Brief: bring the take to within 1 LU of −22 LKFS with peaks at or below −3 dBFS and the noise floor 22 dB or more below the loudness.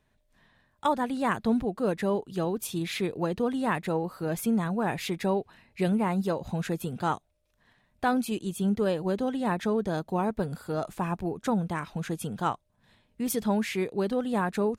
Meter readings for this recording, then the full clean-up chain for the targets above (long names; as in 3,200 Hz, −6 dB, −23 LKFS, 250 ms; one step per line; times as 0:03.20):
integrated loudness −29.5 LKFS; sample peak −14.0 dBFS; target loudness −22.0 LKFS
→ level +7.5 dB